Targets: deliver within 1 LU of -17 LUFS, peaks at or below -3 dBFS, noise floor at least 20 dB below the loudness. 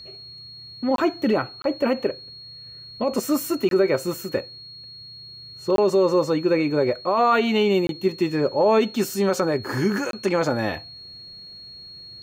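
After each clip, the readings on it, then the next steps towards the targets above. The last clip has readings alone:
dropouts 6; longest dropout 22 ms; steady tone 4300 Hz; tone level -39 dBFS; loudness -22.5 LUFS; peak -9.0 dBFS; loudness target -17.0 LUFS
-> interpolate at 0.96/1.62/3.69/5.76/7.87/10.11, 22 ms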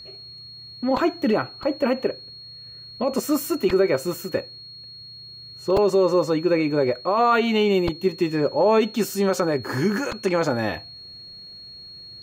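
dropouts 0; steady tone 4300 Hz; tone level -39 dBFS
-> notch 4300 Hz, Q 30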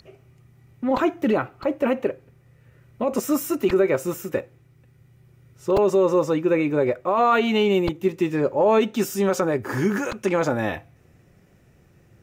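steady tone none; loudness -22.5 LUFS; peak -9.0 dBFS; loudness target -17.0 LUFS
-> gain +5.5 dB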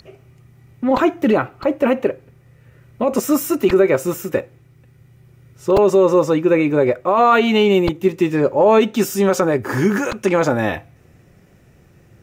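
loudness -17.0 LUFS; peak -3.5 dBFS; noise floor -51 dBFS

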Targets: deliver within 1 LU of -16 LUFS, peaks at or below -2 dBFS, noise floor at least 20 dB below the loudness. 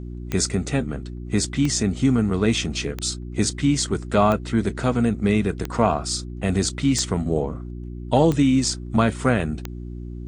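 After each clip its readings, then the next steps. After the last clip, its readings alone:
clicks 8; hum 60 Hz; harmonics up to 360 Hz; hum level -30 dBFS; loudness -22.0 LUFS; peak -3.5 dBFS; loudness target -16.0 LUFS
-> de-click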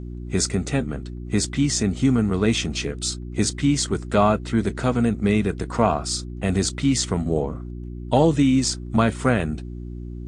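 clicks 0; hum 60 Hz; harmonics up to 360 Hz; hum level -30 dBFS
-> de-hum 60 Hz, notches 6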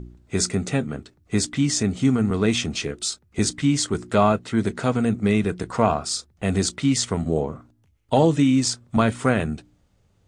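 hum none; loudness -22.5 LUFS; peak -4.5 dBFS; loudness target -16.0 LUFS
-> gain +6.5 dB; limiter -2 dBFS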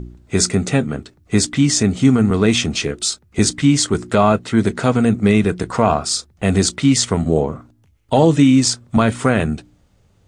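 loudness -16.5 LUFS; peak -2.0 dBFS; noise floor -56 dBFS

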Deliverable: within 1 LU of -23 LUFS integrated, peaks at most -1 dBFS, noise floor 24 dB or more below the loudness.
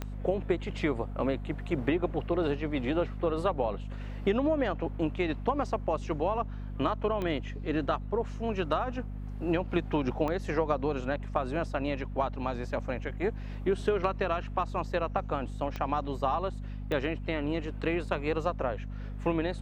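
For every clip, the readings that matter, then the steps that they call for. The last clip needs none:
clicks 5; hum 50 Hz; harmonics up to 250 Hz; hum level -35 dBFS; loudness -31.5 LUFS; peak -13.5 dBFS; loudness target -23.0 LUFS
-> de-click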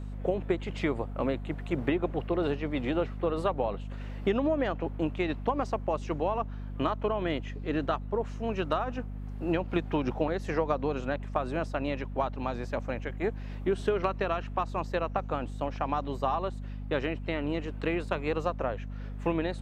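clicks 0; hum 50 Hz; harmonics up to 250 Hz; hum level -35 dBFS
-> de-hum 50 Hz, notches 5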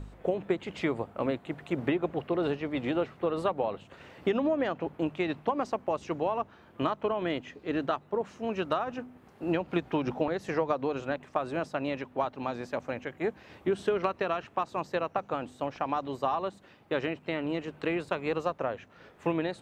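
hum none; loudness -32.0 LUFS; peak -14.0 dBFS; loudness target -23.0 LUFS
-> gain +9 dB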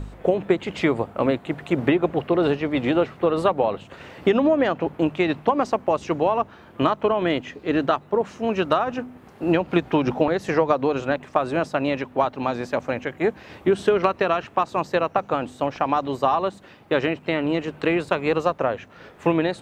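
loudness -23.0 LUFS; peak -5.0 dBFS; noise floor -48 dBFS

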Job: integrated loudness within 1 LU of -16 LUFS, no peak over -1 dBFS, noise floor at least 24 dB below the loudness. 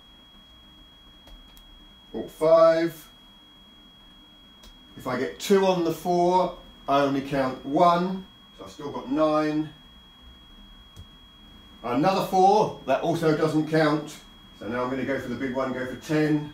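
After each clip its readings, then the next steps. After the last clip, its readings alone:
steady tone 3300 Hz; tone level -51 dBFS; loudness -24.0 LUFS; peak -6.0 dBFS; loudness target -16.0 LUFS
-> notch 3300 Hz, Q 30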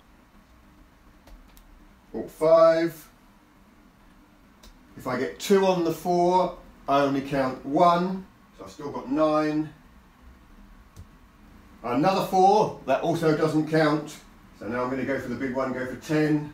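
steady tone none; loudness -24.0 LUFS; peak -6.0 dBFS; loudness target -16.0 LUFS
-> gain +8 dB; limiter -1 dBFS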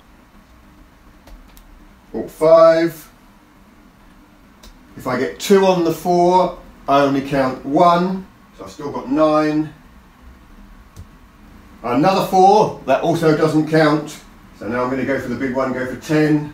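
loudness -16.0 LUFS; peak -1.0 dBFS; noise floor -48 dBFS

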